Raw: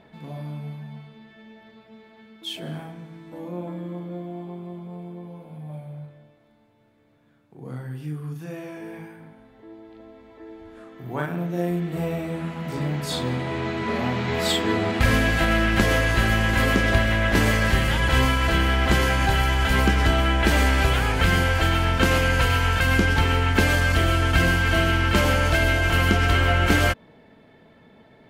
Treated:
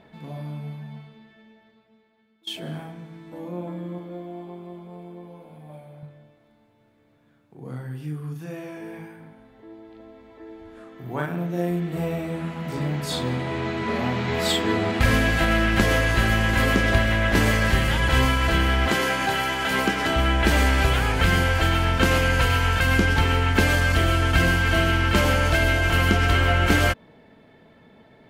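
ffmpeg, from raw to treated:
-filter_complex "[0:a]asettb=1/sr,asplit=3[a][b][c];[a]atrim=end=3.984[d];[b]atrim=start=3.98:end=6.03,asetpts=PTS-STARTPTS,afade=t=in:d=0.004:c=qsin,afade=t=out:st=2.046:d=0.004:c=qsin,equalizer=f=140:t=o:w=0.77:g=-9.5[e];[c]atrim=start=6.026[f];[d][e]acrossfade=d=0.004:c1=hsin:c2=qsin[g];[g][f]acrossfade=d=0.004:c1=qsin:c2=hsin,asettb=1/sr,asplit=3[h][i][j];[h]atrim=end=18.894[k];[i]atrim=start=18.89:end=20.16,asetpts=PTS-STARTPTS,afade=t=in:d=0.004:c=qsin,afade=t=out:st=1.266:d=0.004:c=qsin,highpass=210[l];[j]atrim=start=20.156[m];[k][l]acrossfade=d=0.004:c1=hsin:c2=qsin[n];[n][m]acrossfade=d=0.004:c1=qsin:c2=hsin,asplit=2[o][p];[o]atrim=end=2.47,asetpts=PTS-STARTPTS,afade=t=out:st=0.96:d=1.51:c=qua:silence=0.141254[q];[p]atrim=start=2.47,asetpts=PTS-STARTPTS,afade=t=in:d=0.004:c=hsin:silence=0.141254[r];[q][r]concat=n=2:v=0:a=1"

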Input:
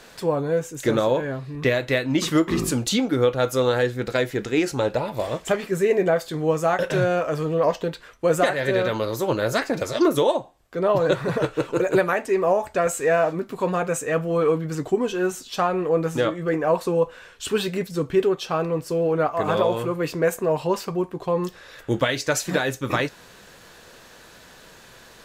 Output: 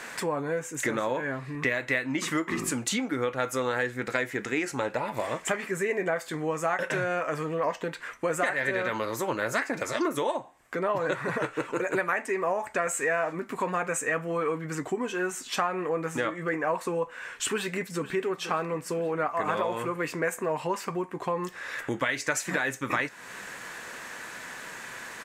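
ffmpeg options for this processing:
-filter_complex "[0:a]asplit=2[a][b];[b]afade=t=in:st=17.47:d=0.01,afade=t=out:st=18.04:d=0.01,aecho=0:1:480|960|1440|1920|2400|2880|3360:0.16788|0.109122|0.0709295|0.0461042|0.0299677|0.019479|0.0126614[c];[a][c]amix=inputs=2:normalize=0,equalizer=f=125:t=o:w=1:g=5,equalizer=f=250:t=o:w=1:g=7,equalizer=f=1k:t=o:w=1:g=6,equalizer=f=2k:t=o:w=1:g=12,equalizer=f=4k:t=o:w=1:g=-4,equalizer=f=8k:t=o:w=1:g=8,acompressor=threshold=-29dB:ratio=2.5,lowshelf=f=200:g=-11"

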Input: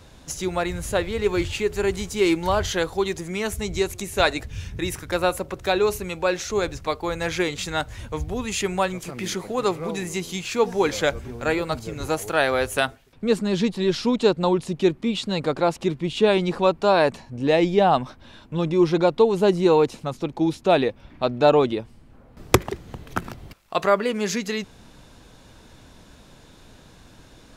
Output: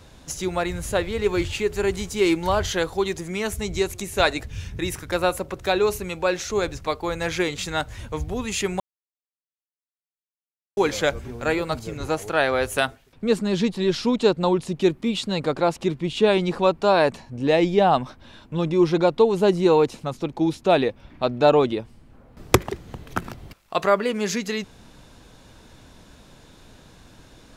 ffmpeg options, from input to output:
-filter_complex "[0:a]asettb=1/sr,asplit=3[a][b][c];[a]atrim=end=11.974[d];[b]atrim=start=11.97:end=12.63,asetpts=PTS-STARTPTS,afade=t=in:d=0.004:c=qsin,afade=t=out:st=0.656:d=0.004:c=qsin,highshelf=f=8.7k:g=-10.5[e];[c]atrim=start=12.626[f];[d][e]acrossfade=d=0.004:c1=hsin:c2=qsin[g];[g][f]acrossfade=d=0.004:c1=qsin:c2=hsin,asettb=1/sr,asplit=3[h][i][j];[h]atrim=end=14.814[k];[i]atrim=start=14.81:end=15.26,asetpts=PTS-STARTPTS,afade=t=in:d=0.004:c=qsin,afade=t=out:st=0.446:d=0.004:c=qsin,highshelf=f=10k:g=7.5[l];[j]atrim=start=15.256[m];[k][l]acrossfade=d=0.004:c1=hsin:c2=qsin[n];[n][m]acrossfade=d=0.004:c1=qsin:c2=hsin,asplit=3[o][p][q];[o]atrim=end=8.8,asetpts=PTS-STARTPTS,afade=t=out:st=8.796:d=0.004:c=hsin[r];[p]atrim=start=8.8:end=10.77,asetpts=PTS-STARTPTS,volume=0[s];[q]atrim=start=10.77,asetpts=PTS-STARTPTS,afade=t=in:d=0.004:c=hsin[t];[r][s][t]concat=n=3:v=0:a=1"

